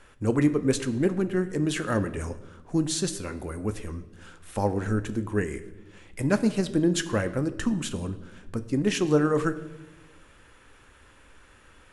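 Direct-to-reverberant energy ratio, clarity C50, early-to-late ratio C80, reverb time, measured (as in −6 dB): 10.0 dB, 14.5 dB, 16.5 dB, 1.1 s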